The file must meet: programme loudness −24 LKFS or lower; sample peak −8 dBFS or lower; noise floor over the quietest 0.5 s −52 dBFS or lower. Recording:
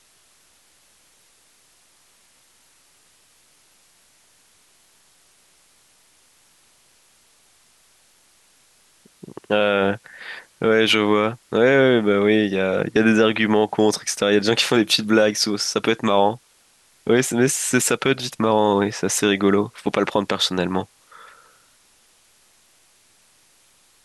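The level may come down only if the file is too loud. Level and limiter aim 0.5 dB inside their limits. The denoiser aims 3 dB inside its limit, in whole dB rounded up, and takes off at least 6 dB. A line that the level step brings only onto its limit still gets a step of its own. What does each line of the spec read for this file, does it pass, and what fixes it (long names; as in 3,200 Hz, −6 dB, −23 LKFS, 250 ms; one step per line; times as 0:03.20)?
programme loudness −19.0 LKFS: out of spec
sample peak −5.5 dBFS: out of spec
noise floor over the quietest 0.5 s −58 dBFS: in spec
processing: level −5.5 dB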